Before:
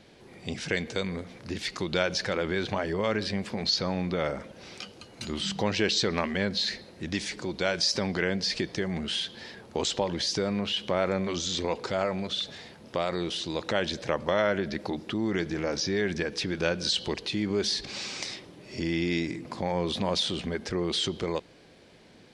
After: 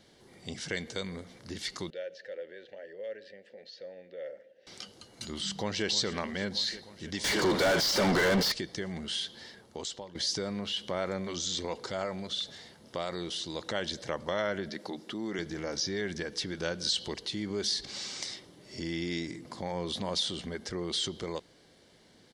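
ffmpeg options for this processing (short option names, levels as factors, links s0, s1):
-filter_complex "[0:a]asettb=1/sr,asplit=3[s0][s1][s2];[s0]atrim=end=1.904[s3];[s1]atrim=start=1.9:end=4.67,asetpts=PTS-STARTPTS,afade=t=in:d=0.004:c=qsin,afade=t=out:st=2.766:d=0.004:c=qsin,asplit=3[s4][s5][s6];[s4]bandpass=f=530:t=q:w=8,volume=1[s7];[s5]bandpass=f=1840:t=q:w=8,volume=0.501[s8];[s6]bandpass=f=2480:t=q:w=8,volume=0.355[s9];[s7][s8][s9]amix=inputs=3:normalize=0[s10];[s2]atrim=start=4.666[s11];[s3][s10]acrossfade=d=0.004:c1=hsin:c2=qsin[s12];[s12][s11]acrossfade=d=0.004:c1=qsin:c2=hsin,asplit=2[s13][s14];[s14]afade=t=in:st=5.44:d=0.01,afade=t=out:st=5.86:d=0.01,aecho=0:1:310|620|930|1240|1550|1860|2170|2480|2790|3100|3410|3720:0.211349|0.169079|0.135263|0.108211|0.0865685|0.0692548|0.0554038|0.0443231|0.0354585|0.0283668|0.0226934|0.0181547[s15];[s13][s15]amix=inputs=2:normalize=0,asettb=1/sr,asplit=3[s16][s17][s18];[s16]atrim=end=7.244[s19];[s17]atrim=start=7.24:end=8.52,asetpts=PTS-STARTPTS,afade=t=in:d=0.004:c=qsin,afade=t=out:st=1.276:d=0.004:c=qsin,asplit=2[s20][s21];[s21]highpass=f=720:p=1,volume=70.8,asoftclip=type=tanh:threshold=0.299[s22];[s20][s22]amix=inputs=2:normalize=0,lowpass=f=1500:p=1,volume=0.501[s23];[s18]atrim=start=8.516[s24];[s19][s23]acrossfade=d=0.004:c1=hsin:c2=qsin[s25];[s25][s24]acrossfade=d=0.004:c1=qsin:c2=hsin,asettb=1/sr,asplit=3[s26][s27][s28];[s26]atrim=end=14.694[s29];[s27]atrim=start=14.69:end=15.39,asetpts=PTS-STARTPTS,afade=t=in:d=0.004:c=qsin,afade=t=out:st=0.696:d=0.004:c=qsin,highpass=180[s30];[s28]atrim=start=15.386[s31];[s29][s30]acrossfade=d=0.004:c1=hsin:c2=qsin[s32];[s32][s31]acrossfade=d=0.004:c1=qsin:c2=hsin,asplit=2[s33][s34];[s33]atrim=end=10.15,asetpts=PTS-STARTPTS,afade=t=out:st=9.4:d=0.75:silence=0.199526[s35];[s34]atrim=start=10.15,asetpts=PTS-STARTPTS,afade=t=in:d=0.004:c=hsin:silence=0.199526[s36];[s35][s36]concat=n=2:v=0:a=1,highshelf=f=3800:g=8,bandreject=f=2500:w=6.5,volume=0.473"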